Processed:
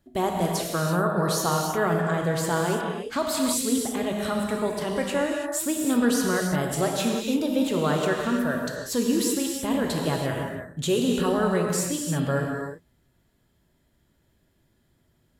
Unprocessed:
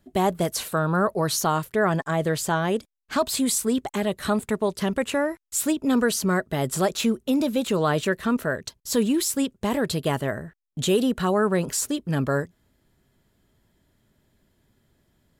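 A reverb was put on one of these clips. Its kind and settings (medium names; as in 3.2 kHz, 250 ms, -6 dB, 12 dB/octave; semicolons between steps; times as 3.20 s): gated-style reverb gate 360 ms flat, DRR 0 dB; trim -4 dB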